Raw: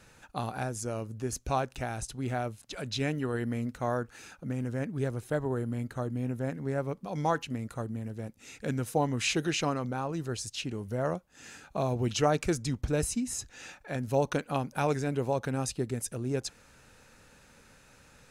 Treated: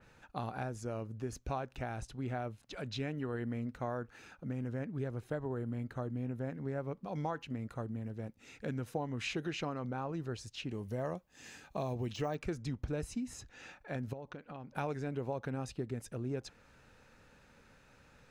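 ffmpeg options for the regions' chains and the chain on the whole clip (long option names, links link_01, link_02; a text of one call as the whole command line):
ffmpeg -i in.wav -filter_complex "[0:a]asettb=1/sr,asplit=3[link_01][link_02][link_03];[link_01]atrim=end=10.704[link_04];[link_02]atrim=start=10.7:end=12.35,asetpts=PTS-STARTPTS,afade=type=in:duration=0.004:curve=qsin,afade=type=out:start_time=1.646:duration=0.004:curve=qsin,bandreject=frequency=1400:width=7.7,deesser=0.95,highshelf=frequency=4000:gain=9.5[link_05];[link_03]atrim=start=12.346[link_06];[link_04][link_05]acrossfade=duration=0.004:curve1=hsin:curve2=qsin[link_07];[link_07][link_06]acrossfade=duration=0.004:curve1=qsin:curve2=hsin,asettb=1/sr,asplit=3[link_08][link_09][link_10];[link_08]atrim=end=14.134[link_11];[link_09]atrim=start=14.13:end=14.75,asetpts=PTS-STARTPTS,afade=type=in:duration=0.004:curve=qsin,afade=type=out:start_time=0.616:duration=0.004:curve=qsin,lowpass=4300,acompressor=threshold=-40dB:ratio=5:attack=3.2:release=140:knee=1:detection=peak[link_12];[link_10]atrim=start=14.746[link_13];[link_11][link_12]acrossfade=duration=0.004:curve1=hsin:curve2=qsin[link_14];[link_14][link_13]acrossfade=duration=0.004:curve1=qsin:curve2=hsin,equalizer=frequency=9900:width=0.58:gain=-11.5,acompressor=threshold=-30dB:ratio=4,adynamicequalizer=threshold=0.00224:dfrequency=3500:dqfactor=0.7:tfrequency=3500:tqfactor=0.7:attack=5:release=100:ratio=0.375:range=1.5:mode=cutabove:tftype=highshelf,volume=-3.5dB" out.wav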